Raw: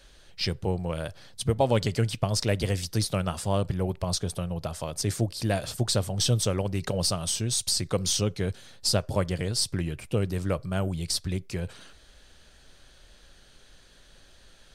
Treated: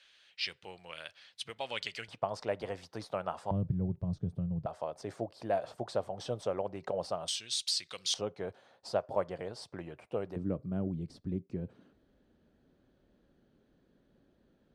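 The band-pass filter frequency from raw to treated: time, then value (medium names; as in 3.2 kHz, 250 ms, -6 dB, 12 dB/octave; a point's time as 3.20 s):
band-pass filter, Q 1.6
2.6 kHz
from 2.08 s 830 Hz
from 3.51 s 150 Hz
from 4.66 s 710 Hz
from 7.28 s 3.3 kHz
from 8.14 s 740 Hz
from 10.36 s 250 Hz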